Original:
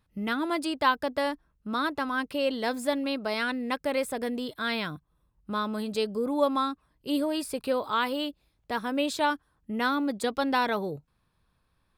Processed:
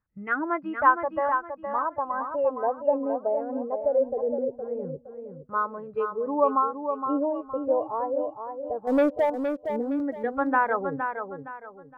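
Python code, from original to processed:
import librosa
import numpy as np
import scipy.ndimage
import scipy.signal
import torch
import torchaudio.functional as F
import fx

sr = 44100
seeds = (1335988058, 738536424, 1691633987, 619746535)

y = scipy.signal.sosfilt(scipy.signal.butter(4, 2300.0, 'lowpass', fs=sr, output='sos'), x)
y = fx.filter_lfo_lowpass(y, sr, shape='saw_down', hz=0.2, low_hz=410.0, high_hz=1700.0, q=2.1)
y = fx.noise_reduce_blind(y, sr, reduce_db=13)
y = fx.leveller(y, sr, passes=2, at=(8.87, 9.3))
y = fx.echo_feedback(y, sr, ms=465, feedback_pct=32, wet_db=-7.0)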